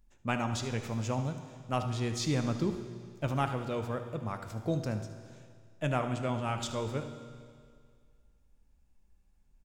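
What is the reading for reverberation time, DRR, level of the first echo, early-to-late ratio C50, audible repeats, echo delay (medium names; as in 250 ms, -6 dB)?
2.0 s, 7.0 dB, -13.5 dB, 8.0 dB, 1, 76 ms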